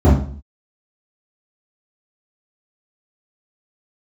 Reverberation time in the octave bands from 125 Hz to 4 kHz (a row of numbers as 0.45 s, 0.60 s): 0.55 s, 0.60 s, 0.50 s, 0.45 s, 0.40 s, 0.40 s